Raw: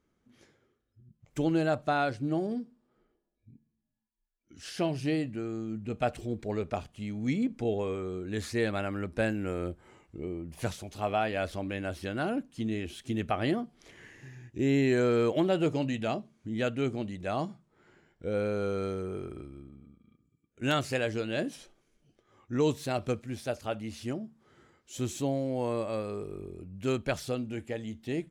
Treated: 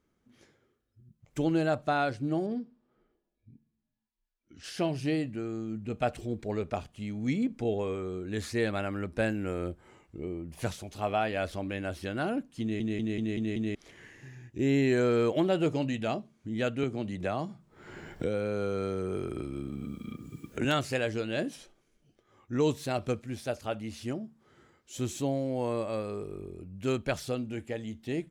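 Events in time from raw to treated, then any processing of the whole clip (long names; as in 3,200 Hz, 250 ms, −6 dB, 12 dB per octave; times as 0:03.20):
0:02.46–0:04.64: low-pass filter 4,700 Hz
0:12.61: stutter in place 0.19 s, 6 plays
0:16.83–0:20.65: multiband upward and downward compressor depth 100%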